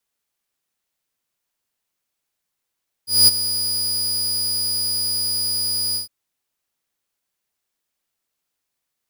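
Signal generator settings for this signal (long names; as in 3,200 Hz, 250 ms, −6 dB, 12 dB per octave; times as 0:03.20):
note with an ADSR envelope saw 4,910 Hz, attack 207 ms, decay 21 ms, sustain −12.5 dB, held 2.88 s, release 128 ms −5 dBFS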